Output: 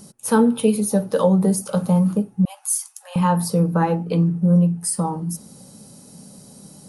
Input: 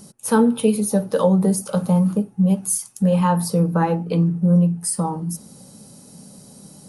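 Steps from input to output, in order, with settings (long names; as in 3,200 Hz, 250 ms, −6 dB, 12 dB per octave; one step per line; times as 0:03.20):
0:02.45–0:03.16: Butterworth high-pass 730 Hz 48 dB per octave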